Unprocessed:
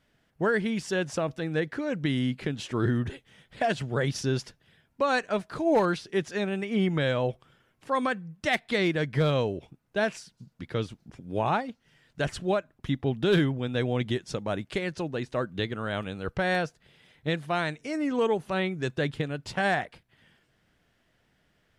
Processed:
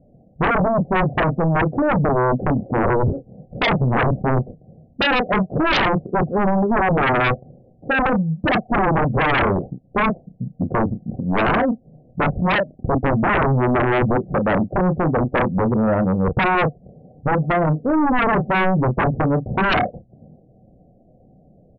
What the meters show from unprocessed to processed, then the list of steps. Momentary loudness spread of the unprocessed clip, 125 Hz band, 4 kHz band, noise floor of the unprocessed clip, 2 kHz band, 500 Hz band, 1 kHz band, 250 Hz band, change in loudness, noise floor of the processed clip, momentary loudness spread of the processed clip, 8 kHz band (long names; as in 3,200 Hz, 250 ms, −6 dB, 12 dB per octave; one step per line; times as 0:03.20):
8 LU, +10.5 dB, +5.5 dB, −71 dBFS, +9.5 dB, +7.5 dB, +13.0 dB, +9.5 dB, +9.5 dB, −53 dBFS, 6 LU, below −10 dB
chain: Chebyshev low-pass with heavy ripple 770 Hz, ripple 6 dB
double-tracking delay 32 ms −8.5 dB
sine wavefolder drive 17 dB, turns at −15 dBFS
level +1 dB